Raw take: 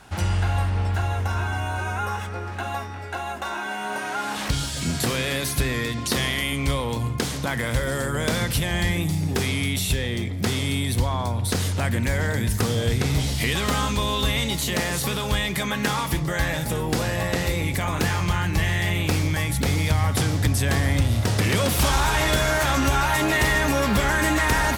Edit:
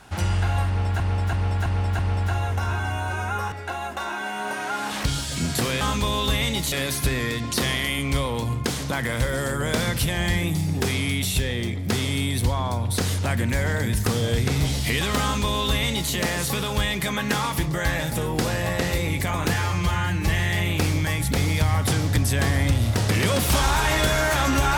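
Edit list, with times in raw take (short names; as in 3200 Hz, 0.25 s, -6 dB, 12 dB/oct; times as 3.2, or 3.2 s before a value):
0.67–1 loop, 5 plays
2.2–2.97 cut
13.76–14.67 copy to 5.26
18.08–18.57 stretch 1.5×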